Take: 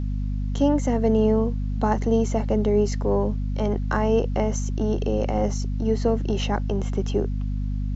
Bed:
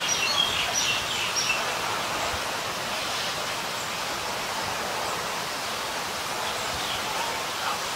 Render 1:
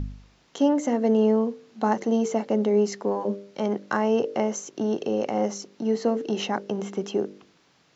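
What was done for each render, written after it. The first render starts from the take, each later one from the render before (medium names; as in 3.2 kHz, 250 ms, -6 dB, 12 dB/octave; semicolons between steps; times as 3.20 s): de-hum 50 Hz, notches 12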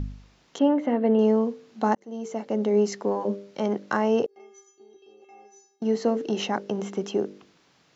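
0.59–1.19 s: low-pass 3.3 kHz 24 dB/octave; 1.95–2.79 s: fade in; 4.26–5.82 s: inharmonic resonator 390 Hz, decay 0.77 s, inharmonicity 0.008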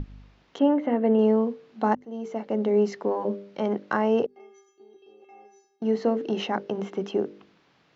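low-pass 3.6 kHz 12 dB/octave; hum notches 50/100/150/200/250 Hz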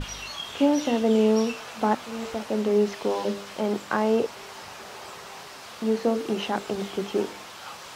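add bed -12 dB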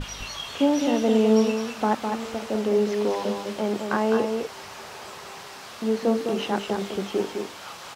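delay 207 ms -5.5 dB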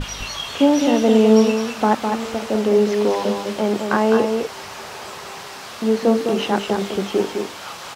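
trim +6 dB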